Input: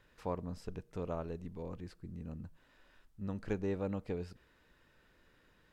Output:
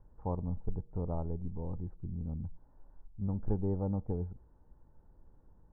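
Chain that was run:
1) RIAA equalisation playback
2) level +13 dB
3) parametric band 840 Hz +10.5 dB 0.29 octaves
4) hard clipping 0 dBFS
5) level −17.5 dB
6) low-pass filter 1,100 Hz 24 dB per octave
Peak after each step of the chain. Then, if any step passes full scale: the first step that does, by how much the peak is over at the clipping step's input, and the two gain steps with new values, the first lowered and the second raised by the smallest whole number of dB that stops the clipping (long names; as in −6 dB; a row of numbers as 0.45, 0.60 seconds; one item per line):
−15.5, −2.5, −2.0, −2.0, −19.5, −19.5 dBFS
no step passes full scale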